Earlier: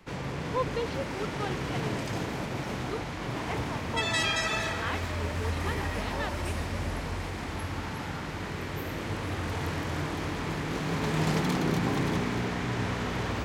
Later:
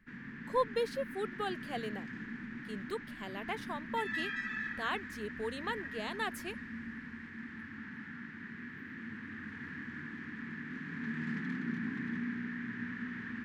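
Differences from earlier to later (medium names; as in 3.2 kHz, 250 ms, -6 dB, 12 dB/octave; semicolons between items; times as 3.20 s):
speech: remove Savitzky-Golay filter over 15 samples; background: add two resonant band-passes 630 Hz, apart 2.9 oct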